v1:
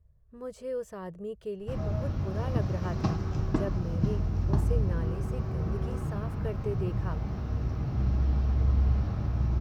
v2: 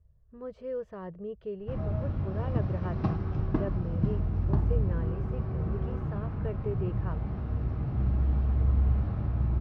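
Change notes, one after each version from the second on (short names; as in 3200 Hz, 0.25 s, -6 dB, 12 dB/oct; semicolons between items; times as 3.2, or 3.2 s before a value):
master: add air absorption 320 m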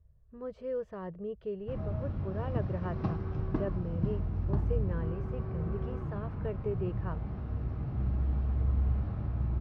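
first sound -4.0 dB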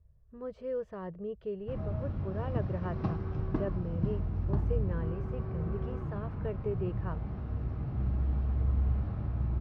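none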